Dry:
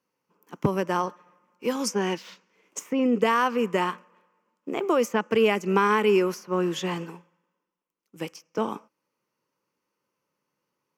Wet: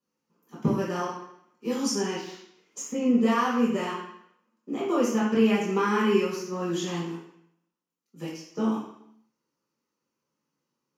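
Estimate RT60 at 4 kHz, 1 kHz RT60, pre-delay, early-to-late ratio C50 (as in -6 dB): 0.70 s, 0.70 s, 3 ms, 2.0 dB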